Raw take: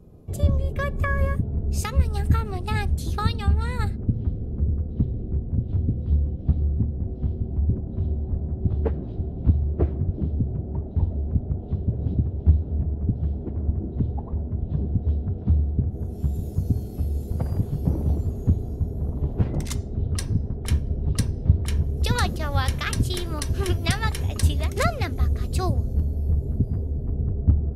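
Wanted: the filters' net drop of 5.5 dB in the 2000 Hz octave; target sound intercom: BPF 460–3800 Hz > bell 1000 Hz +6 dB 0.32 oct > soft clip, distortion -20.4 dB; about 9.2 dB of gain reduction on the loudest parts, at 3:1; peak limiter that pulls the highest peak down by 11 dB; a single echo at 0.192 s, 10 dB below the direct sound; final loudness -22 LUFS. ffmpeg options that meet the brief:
-af "equalizer=f=2k:t=o:g=-7,acompressor=threshold=-23dB:ratio=3,alimiter=limit=-22.5dB:level=0:latency=1,highpass=460,lowpass=3.8k,equalizer=f=1k:t=o:w=0.32:g=6,aecho=1:1:192:0.316,asoftclip=threshold=-27dB,volume=22.5dB"

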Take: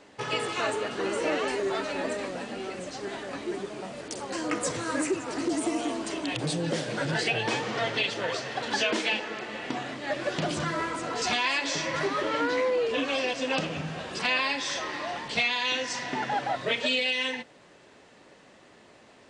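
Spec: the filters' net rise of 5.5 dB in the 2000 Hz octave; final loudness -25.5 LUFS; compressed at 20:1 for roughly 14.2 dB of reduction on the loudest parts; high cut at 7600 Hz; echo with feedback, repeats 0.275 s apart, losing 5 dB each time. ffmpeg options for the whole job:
-af "lowpass=7.6k,equalizer=f=2k:t=o:g=7,acompressor=threshold=-32dB:ratio=20,aecho=1:1:275|550|825|1100|1375|1650|1925:0.562|0.315|0.176|0.0988|0.0553|0.031|0.0173,volume=8dB"

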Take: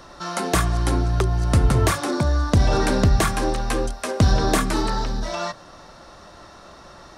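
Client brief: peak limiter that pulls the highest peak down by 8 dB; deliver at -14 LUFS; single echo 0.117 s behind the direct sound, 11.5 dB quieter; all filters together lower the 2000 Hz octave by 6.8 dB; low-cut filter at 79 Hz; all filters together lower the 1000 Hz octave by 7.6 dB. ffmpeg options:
-af "highpass=79,equalizer=f=1k:t=o:g=-9,equalizer=f=2k:t=o:g=-5.5,alimiter=limit=-14.5dB:level=0:latency=1,aecho=1:1:117:0.266,volume=12dB"

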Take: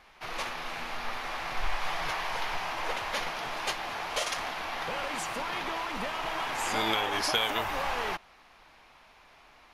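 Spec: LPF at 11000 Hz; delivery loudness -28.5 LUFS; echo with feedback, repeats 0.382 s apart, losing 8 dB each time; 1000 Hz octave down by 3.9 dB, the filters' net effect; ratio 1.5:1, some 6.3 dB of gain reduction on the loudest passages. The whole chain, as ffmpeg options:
-af "lowpass=11k,equalizer=f=1k:t=o:g=-5,acompressor=threshold=-42dB:ratio=1.5,aecho=1:1:382|764|1146|1528|1910:0.398|0.159|0.0637|0.0255|0.0102,volume=9dB"

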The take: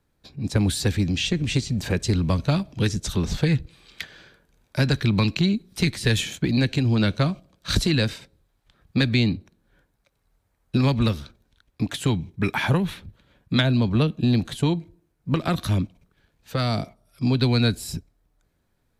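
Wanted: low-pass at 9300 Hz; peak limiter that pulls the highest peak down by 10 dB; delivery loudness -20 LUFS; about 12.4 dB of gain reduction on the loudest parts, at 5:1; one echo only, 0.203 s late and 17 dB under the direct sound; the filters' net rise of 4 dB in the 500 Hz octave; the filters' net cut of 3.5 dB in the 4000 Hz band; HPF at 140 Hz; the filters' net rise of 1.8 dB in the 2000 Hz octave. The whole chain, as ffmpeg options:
-af "highpass=140,lowpass=9.3k,equalizer=f=500:t=o:g=5,equalizer=f=2k:t=o:g=3.5,equalizer=f=4k:t=o:g=-5,acompressor=threshold=-31dB:ratio=5,alimiter=level_in=0.5dB:limit=-24dB:level=0:latency=1,volume=-0.5dB,aecho=1:1:203:0.141,volume=16.5dB"

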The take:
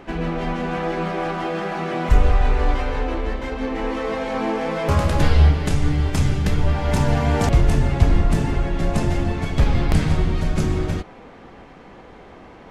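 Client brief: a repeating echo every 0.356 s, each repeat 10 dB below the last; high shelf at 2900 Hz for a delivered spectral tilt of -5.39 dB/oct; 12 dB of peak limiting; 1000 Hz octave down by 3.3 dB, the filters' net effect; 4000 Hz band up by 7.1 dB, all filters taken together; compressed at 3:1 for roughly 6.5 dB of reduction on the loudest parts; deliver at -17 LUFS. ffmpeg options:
-af "equalizer=f=1k:t=o:g=-5.5,highshelf=f=2.9k:g=7,equalizer=f=4k:t=o:g=4,acompressor=threshold=-17dB:ratio=3,alimiter=limit=-19dB:level=0:latency=1,aecho=1:1:356|712|1068|1424:0.316|0.101|0.0324|0.0104,volume=11.5dB"

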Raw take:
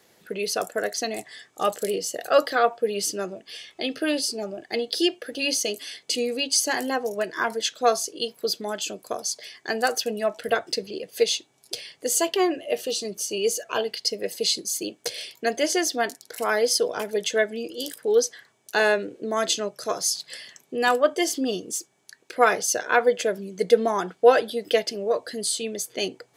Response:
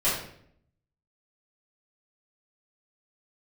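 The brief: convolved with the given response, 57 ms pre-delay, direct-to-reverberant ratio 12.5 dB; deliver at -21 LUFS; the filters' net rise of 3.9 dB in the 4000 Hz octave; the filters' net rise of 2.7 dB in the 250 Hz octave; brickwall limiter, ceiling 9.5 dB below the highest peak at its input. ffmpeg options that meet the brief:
-filter_complex "[0:a]equalizer=f=250:t=o:g=3.5,equalizer=f=4k:t=o:g=5,alimiter=limit=-12dB:level=0:latency=1,asplit=2[a][b];[1:a]atrim=start_sample=2205,adelay=57[c];[b][c]afir=irnorm=-1:irlink=0,volume=-25dB[d];[a][d]amix=inputs=2:normalize=0,volume=4dB"

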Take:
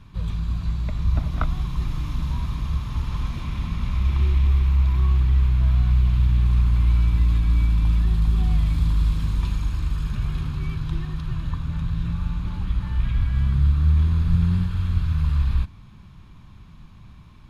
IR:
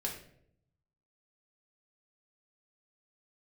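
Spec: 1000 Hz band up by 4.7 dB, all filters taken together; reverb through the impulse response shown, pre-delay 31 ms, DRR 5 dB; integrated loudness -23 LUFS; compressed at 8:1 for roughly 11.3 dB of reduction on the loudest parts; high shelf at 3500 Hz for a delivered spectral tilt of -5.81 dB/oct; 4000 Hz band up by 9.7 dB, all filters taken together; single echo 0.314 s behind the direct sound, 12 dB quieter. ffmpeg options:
-filter_complex "[0:a]equalizer=f=1k:t=o:g=4.5,highshelf=f=3.5k:g=5.5,equalizer=f=4k:t=o:g=8,acompressor=threshold=-26dB:ratio=8,aecho=1:1:314:0.251,asplit=2[a][b];[1:a]atrim=start_sample=2205,adelay=31[c];[b][c]afir=irnorm=-1:irlink=0,volume=-7dB[d];[a][d]amix=inputs=2:normalize=0,volume=6.5dB"

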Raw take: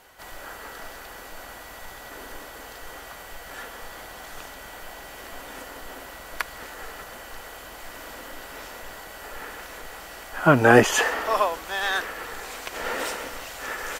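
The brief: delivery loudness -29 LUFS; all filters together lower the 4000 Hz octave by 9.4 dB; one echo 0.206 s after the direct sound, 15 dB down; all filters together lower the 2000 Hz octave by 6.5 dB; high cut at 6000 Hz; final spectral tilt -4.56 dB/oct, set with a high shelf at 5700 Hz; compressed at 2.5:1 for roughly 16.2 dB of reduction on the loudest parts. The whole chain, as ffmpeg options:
-af "lowpass=6k,equalizer=f=2k:t=o:g=-7,equalizer=f=4k:t=o:g=-8,highshelf=f=5.7k:g=-3.5,acompressor=threshold=-35dB:ratio=2.5,aecho=1:1:206:0.178,volume=11dB"

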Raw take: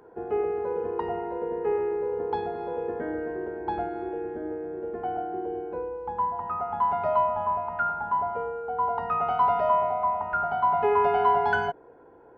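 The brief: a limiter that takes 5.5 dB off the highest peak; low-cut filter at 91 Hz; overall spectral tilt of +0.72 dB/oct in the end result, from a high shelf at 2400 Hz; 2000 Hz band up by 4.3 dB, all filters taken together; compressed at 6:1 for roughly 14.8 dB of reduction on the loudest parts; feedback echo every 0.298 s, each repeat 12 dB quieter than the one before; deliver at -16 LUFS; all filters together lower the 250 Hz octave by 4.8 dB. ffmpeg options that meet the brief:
-af "highpass=91,equalizer=f=250:t=o:g=-8.5,equalizer=f=2k:t=o:g=9,highshelf=f=2.4k:g=-3.5,acompressor=threshold=-34dB:ratio=6,alimiter=level_in=5dB:limit=-24dB:level=0:latency=1,volume=-5dB,aecho=1:1:298|596|894:0.251|0.0628|0.0157,volume=21.5dB"

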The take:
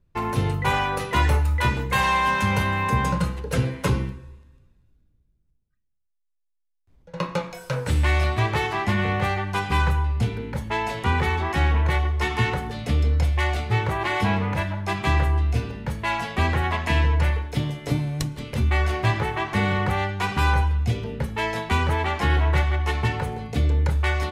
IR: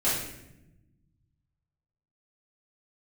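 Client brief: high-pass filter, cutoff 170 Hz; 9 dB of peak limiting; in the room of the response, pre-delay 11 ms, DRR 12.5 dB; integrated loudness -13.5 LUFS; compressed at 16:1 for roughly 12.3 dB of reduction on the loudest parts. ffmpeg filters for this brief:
-filter_complex "[0:a]highpass=170,acompressor=threshold=-30dB:ratio=16,alimiter=level_in=1dB:limit=-24dB:level=0:latency=1,volume=-1dB,asplit=2[a][b];[1:a]atrim=start_sample=2205,adelay=11[c];[b][c]afir=irnorm=-1:irlink=0,volume=-24dB[d];[a][d]amix=inputs=2:normalize=0,volume=21.5dB"

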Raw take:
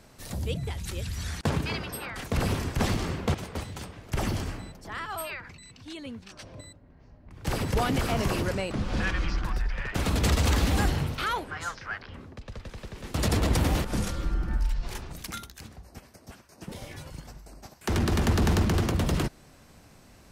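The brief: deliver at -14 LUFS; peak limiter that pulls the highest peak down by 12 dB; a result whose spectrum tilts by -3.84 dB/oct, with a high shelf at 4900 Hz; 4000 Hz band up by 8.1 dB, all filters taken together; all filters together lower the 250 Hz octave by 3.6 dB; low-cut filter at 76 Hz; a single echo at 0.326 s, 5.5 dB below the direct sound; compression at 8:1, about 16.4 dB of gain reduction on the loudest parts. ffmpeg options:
-af "highpass=76,equalizer=f=250:t=o:g=-5,equalizer=f=4k:t=o:g=7.5,highshelf=f=4.9k:g=6,acompressor=threshold=-38dB:ratio=8,alimiter=level_in=7.5dB:limit=-24dB:level=0:latency=1,volume=-7.5dB,aecho=1:1:326:0.531,volume=27.5dB"

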